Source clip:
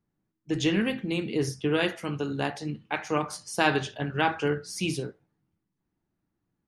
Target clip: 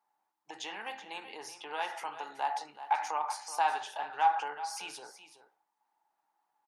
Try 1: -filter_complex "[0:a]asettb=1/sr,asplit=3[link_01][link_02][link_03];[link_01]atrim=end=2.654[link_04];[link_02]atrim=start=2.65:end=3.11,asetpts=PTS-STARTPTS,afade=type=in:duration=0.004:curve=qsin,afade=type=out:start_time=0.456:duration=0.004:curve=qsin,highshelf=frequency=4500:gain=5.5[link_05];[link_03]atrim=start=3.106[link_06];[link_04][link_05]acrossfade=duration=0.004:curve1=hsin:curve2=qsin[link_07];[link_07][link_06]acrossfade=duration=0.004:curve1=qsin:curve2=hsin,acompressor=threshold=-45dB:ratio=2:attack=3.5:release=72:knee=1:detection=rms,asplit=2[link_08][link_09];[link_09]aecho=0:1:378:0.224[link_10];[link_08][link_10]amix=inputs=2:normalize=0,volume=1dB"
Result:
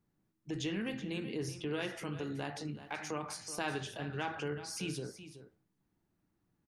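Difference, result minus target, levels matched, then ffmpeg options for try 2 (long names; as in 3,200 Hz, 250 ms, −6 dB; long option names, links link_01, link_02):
1,000 Hz band −10.0 dB
-filter_complex "[0:a]asettb=1/sr,asplit=3[link_01][link_02][link_03];[link_01]atrim=end=2.654[link_04];[link_02]atrim=start=2.65:end=3.11,asetpts=PTS-STARTPTS,afade=type=in:duration=0.004:curve=qsin,afade=type=out:start_time=0.456:duration=0.004:curve=qsin,highshelf=frequency=4500:gain=5.5[link_05];[link_03]atrim=start=3.106[link_06];[link_04][link_05]acrossfade=duration=0.004:curve1=hsin:curve2=qsin[link_07];[link_07][link_06]acrossfade=duration=0.004:curve1=qsin:curve2=hsin,acompressor=threshold=-45dB:ratio=2:attack=3.5:release=72:knee=1:detection=rms,highpass=frequency=850:width_type=q:width=9.7,asplit=2[link_08][link_09];[link_09]aecho=0:1:378:0.224[link_10];[link_08][link_10]amix=inputs=2:normalize=0,volume=1dB"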